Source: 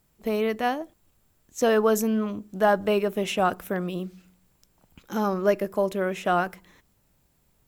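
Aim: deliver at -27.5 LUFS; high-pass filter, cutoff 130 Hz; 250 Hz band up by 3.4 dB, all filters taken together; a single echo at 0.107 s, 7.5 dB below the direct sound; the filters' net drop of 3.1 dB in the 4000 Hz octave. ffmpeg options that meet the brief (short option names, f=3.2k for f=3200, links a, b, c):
-af "highpass=130,equalizer=f=250:t=o:g=5,equalizer=f=4k:t=o:g=-5,aecho=1:1:107:0.422,volume=-4dB"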